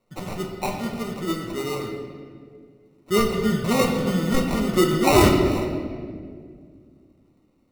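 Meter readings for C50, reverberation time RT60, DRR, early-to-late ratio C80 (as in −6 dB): 4.0 dB, 2.0 s, 0.5 dB, 5.5 dB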